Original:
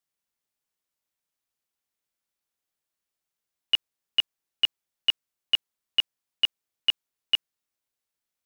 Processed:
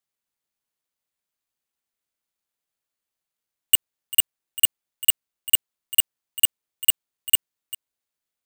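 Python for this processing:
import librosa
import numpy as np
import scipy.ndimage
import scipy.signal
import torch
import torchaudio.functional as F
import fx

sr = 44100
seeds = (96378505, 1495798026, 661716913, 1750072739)

p1 = x + fx.echo_single(x, sr, ms=395, db=-17.5, dry=0)
y = (np.kron(scipy.signal.resample_poly(p1, 1, 4), np.eye(4)[0]) * 4)[:len(p1)]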